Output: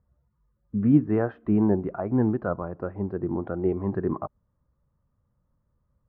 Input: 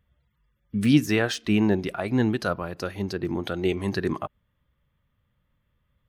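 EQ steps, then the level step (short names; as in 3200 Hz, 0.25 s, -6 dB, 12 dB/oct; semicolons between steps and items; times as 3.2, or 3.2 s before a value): LPF 1200 Hz 24 dB/oct; 0.0 dB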